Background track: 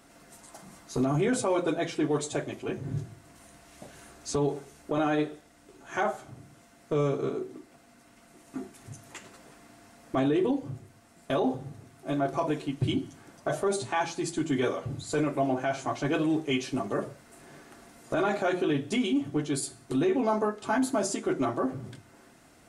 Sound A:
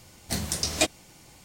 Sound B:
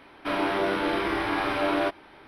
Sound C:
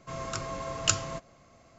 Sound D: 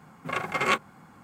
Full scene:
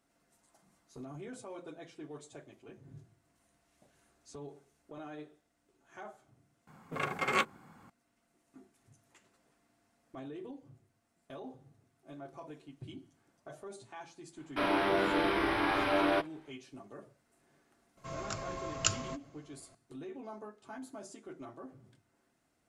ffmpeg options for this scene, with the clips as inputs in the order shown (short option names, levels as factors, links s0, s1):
-filter_complex "[0:a]volume=0.106[s0];[2:a]agate=range=0.355:threshold=0.00562:ratio=16:release=100:detection=peak[s1];[4:a]atrim=end=1.23,asetpts=PTS-STARTPTS,volume=0.531,afade=t=in:d=0.004:c=hsin,afade=t=out:st=1.226:d=0.004:c=hsin,adelay=6670[s2];[s1]atrim=end=2.27,asetpts=PTS-STARTPTS,volume=0.668,afade=t=in:d=0.1,afade=t=out:st=2.17:d=0.1,adelay=14310[s3];[3:a]atrim=end=1.78,asetpts=PTS-STARTPTS,volume=0.562,afade=t=in:d=0.004:c=hsin,afade=t=out:st=1.776:d=0.004:c=hsin,adelay=17970[s4];[s0][s2][s3][s4]amix=inputs=4:normalize=0"